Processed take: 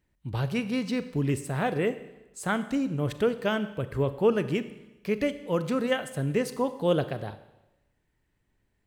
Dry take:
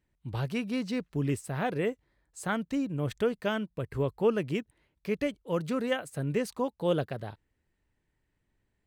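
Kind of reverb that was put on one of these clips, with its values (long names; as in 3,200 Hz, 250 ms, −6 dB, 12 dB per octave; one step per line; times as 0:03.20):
four-comb reverb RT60 1 s, combs from 30 ms, DRR 12 dB
level +3 dB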